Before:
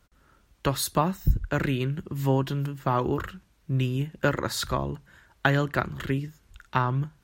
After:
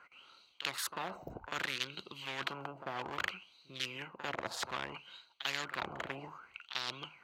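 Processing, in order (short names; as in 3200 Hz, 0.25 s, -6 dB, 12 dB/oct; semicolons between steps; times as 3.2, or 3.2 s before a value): Wiener smoothing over 25 samples; tilt +3 dB/oct; notch 610 Hz, Q 12; reverse echo 45 ms -20 dB; reverse; compressor 6:1, threshold -35 dBFS, peak gain reduction 18.5 dB; reverse; wah 0.62 Hz 640–3900 Hz, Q 11; spectral compressor 4:1; gain +15.5 dB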